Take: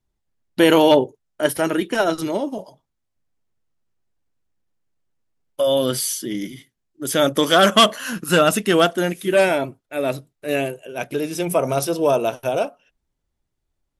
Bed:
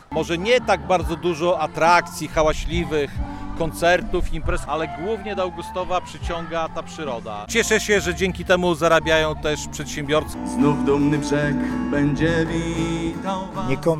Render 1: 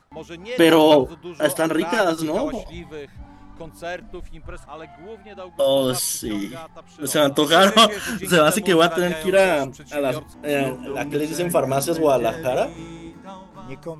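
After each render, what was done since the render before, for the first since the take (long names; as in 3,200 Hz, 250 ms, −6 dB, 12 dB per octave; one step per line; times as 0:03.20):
mix in bed −13.5 dB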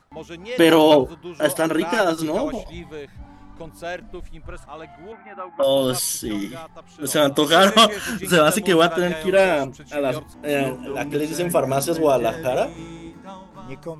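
0:05.12–0:05.63: loudspeaker in its box 170–2,300 Hz, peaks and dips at 180 Hz −5 dB, 290 Hz +9 dB, 440 Hz −8 dB, 900 Hz +7 dB, 1,300 Hz +10 dB, 2,100 Hz +8 dB
0:08.82–0:10.14: high-shelf EQ 7,900 Hz −7.5 dB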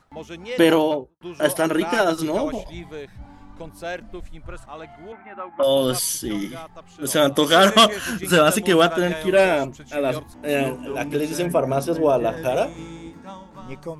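0:00.51–0:01.21: fade out and dull
0:11.46–0:12.37: high-shelf EQ 2,500 Hz −10 dB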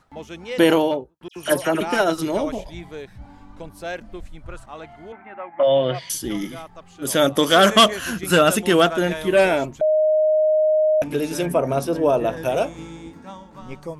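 0:01.28–0:01.81: all-pass dispersion lows, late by 81 ms, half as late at 2,500 Hz
0:05.34–0:06.10: loudspeaker in its box 140–3,100 Hz, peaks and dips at 140 Hz +7 dB, 240 Hz −9 dB, 410 Hz −4 dB, 650 Hz +7 dB, 1,300 Hz −6 dB, 2,000 Hz +9 dB
0:09.81–0:11.02: beep over 620 Hz −14 dBFS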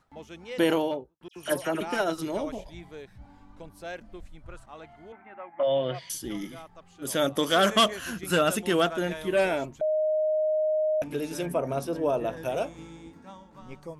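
level −8 dB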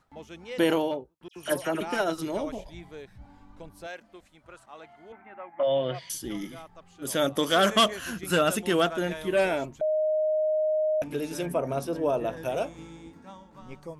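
0:03.86–0:05.09: high-pass filter 610 Hz → 290 Hz 6 dB per octave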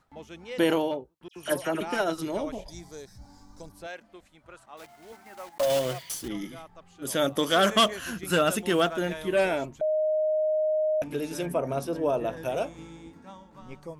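0:02.68–0:03.72: high shelf with overshoot 3,900 Hz +11 dB, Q 3
0:04.77–0:06.29: one scale factor per block 3 bits
0:07.17–0:09.13: log-companded quantiser 8 bits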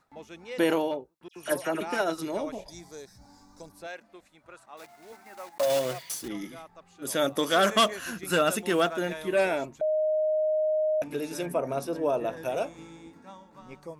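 low-shelf EQ 110 Hz −12 dB
notch filter 3,100 Hz, Q 11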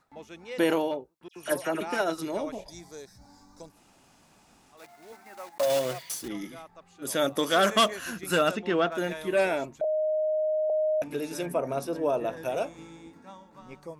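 0:03.73–0:04.78: fill with room tone, crossfade 0.16 s
0:08.51–0:08.92: high-frequency loss of the air 180 metres
0:09.84–0:10.70: Chebyshev low-pass with heavy ripple 970 Hz, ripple 3 dB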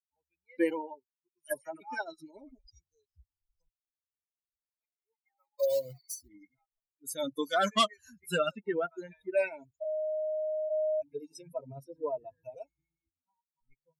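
spectral dynamics exaggerated over time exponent 3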